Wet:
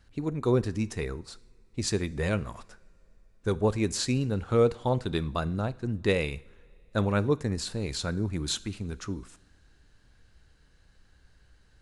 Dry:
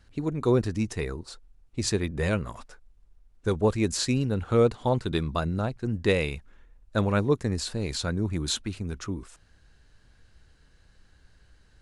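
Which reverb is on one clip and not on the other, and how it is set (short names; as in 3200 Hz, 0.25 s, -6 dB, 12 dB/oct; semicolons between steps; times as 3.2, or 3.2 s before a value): two-slope reverb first 0.58 s, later 3.5 s, from -20 dB, DRR 16.5 dB; gain -2 dB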